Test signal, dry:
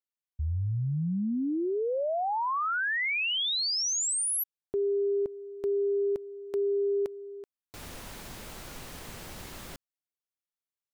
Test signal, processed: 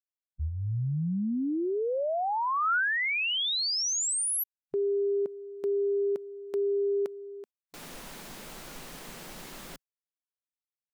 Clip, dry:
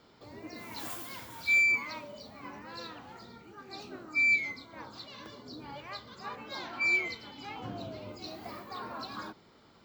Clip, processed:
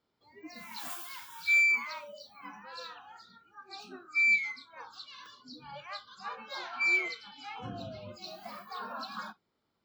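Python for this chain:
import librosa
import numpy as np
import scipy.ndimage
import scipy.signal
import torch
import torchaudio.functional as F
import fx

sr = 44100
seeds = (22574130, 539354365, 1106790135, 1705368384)

y = fx.noise_reduce_blind(x, sr, reduce_db=20)
y = fx.dynamic_eq(y, sr, hz=1400.0, q=3.4, threshold_db=-50.0, ratio=4.0, max_db=4)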